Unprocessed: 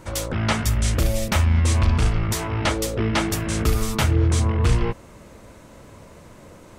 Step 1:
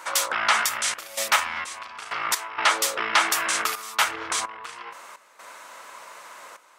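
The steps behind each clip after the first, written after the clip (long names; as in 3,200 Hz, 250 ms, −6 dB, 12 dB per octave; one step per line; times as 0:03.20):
brickwall limiter −15 dBFS, peak gain reduction 6.5 dB
gate pattern "xxxx.xx..x.x" 64 BPM −12 dB
high-pass with resonance 1,100 Hz, resonance Q 1.5
level +7 dB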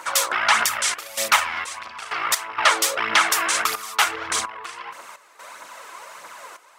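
phase shifter 1.6 Hz, delay 3 ms, feedback 46%
level +2 dB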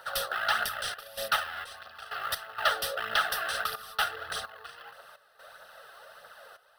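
in parallel at −11 dB: sample-rate reduction 5,400 Hz, jitter 20%
on the sum: phaser with its sweep stopped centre 1,500 Hz, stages 8
level −7.5 dB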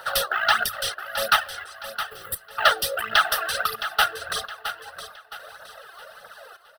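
reverb reduction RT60 2 s
gain on a spectral selection 0:02.09–0:02.52, 550–7,400 Hz −18 dB
on a send: repeating echo 666 ms, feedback 37%, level −11 dB
on the sum: level +8.5 dB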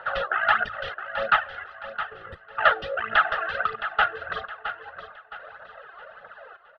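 low-pass filter 2,500 Hz 24 dB per octave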